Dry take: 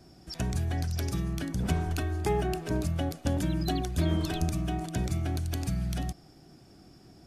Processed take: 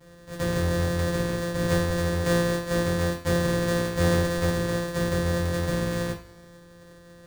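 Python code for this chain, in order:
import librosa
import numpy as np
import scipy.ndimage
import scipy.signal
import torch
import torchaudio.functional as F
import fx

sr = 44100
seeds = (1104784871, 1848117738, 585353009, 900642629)

y = np.r_[np.sort(x[:len(x) // 256 * 256].reshape(-1, 256), axis=1).ravel(), x[len(x) // 256 * 256:]]
y = fx.rev_double_slope(y, sr, seeds[0], early_s=0.29, late_s=2.1, knee_db=-27, drr_db=-7.0)
y = y * librosa.db_to_amplitude(-4.0)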